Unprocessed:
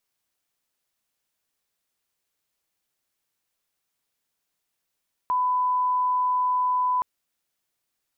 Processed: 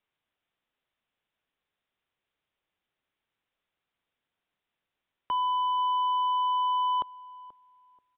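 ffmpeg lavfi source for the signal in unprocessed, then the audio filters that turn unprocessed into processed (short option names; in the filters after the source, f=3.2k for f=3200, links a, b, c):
-f lavfi -i "sine=f=1000:d=1.72:r=44100,volume=-1.94dB"
-filter_complex "[0:a]acrossover=split=580|660[a][b][c];[c]asoftclip=type=hard:threshold=-30dB[d];[a][b][d]amix=inputs=3:normalize=0,asplit=2[e][f];[f]adelay=483,lowpass=f=910:p=1,volume=-17dB,asplit=2[g][h];[h]adelay=483,lowpass=f=910:p=1,volume=0.3,asplit=2[i][j];[j]adelay=483,lowpass=f=910:p=1,volume=0.3[k];[e][g][i][k]amix=inputs=4:normalize=0,aresample=8000,aresample=44100"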